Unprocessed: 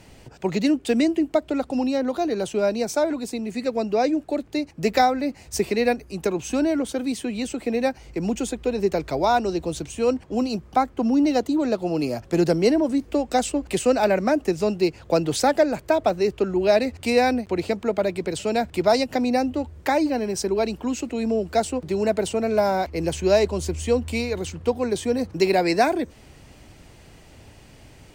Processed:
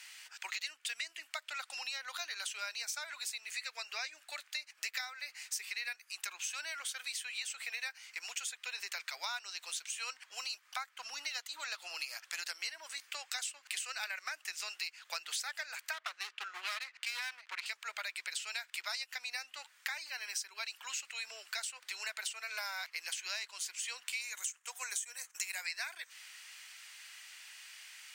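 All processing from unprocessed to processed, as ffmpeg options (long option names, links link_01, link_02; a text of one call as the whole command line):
ffmpeg -i in.wav -filter_complex "[0:a]asettb=1/sr,asplit=3[link_01][link_02][link_03];[link_01]atrim=end=15.934[link_04];[link_02]atrim=start=15.93:end=17.66,asetpts=PTS-STARTPTS,afade=type=in:duration=0.004:curve=qsin,afade=type=out:start_time=1.726:duration=0.004:curve=qsin,adynamicsmooth=sensitivity=5.5:basefreq=3500,aeval=exprs='clip(val(0),-1,0.0668)':channel_layout=same[link_05];[link_03]atrim=start=17.656[link_06];[link_04][link_05]acrossfade=duration=0.004:curve1=hsin:curve2=qsin[link_07];[link_07][link_06]acrossfade=duration=0.004:curve1=qsin:curve2=hsin,asettb=1/sr,asplit=3[link_08][link_09][link_10];[link_08]atrim=end=24.214[link_11];[link_09]atrim=start=24.21:end=25.66,asetpts=PTS-STARTPTS,afade=type=in:duration=0.004:curve=qsin,afade=type=out:start_time=1.446:duration=0.004:curve=qsin,agate=range=-33dB:threshold=-33dB:ratio=3:release=100:detection=peak,highshelf=frequency=5600:width_type=q:width=3:gain=7,acompressor=mode=upward:threshold=-36dB:ratio=2.5:attack=3.2:release=140:knee=2.83:detection=peak[link_12];[link_10]atrim=start=25.656[link_13];[link_11][link_12]acrossfade=duration=0.004:curve1=hsin:curve2=qsin[link_14];[link_14][link_13]acrossfade=duration=0.004:curve1=qsin:curve2=hsin,highpass=frequency=1500:width=0.5412,highpass=frequency=1500:width=1.3066,acompressor=threshold=-41dB:ratio=6,volume=4dB" out.wav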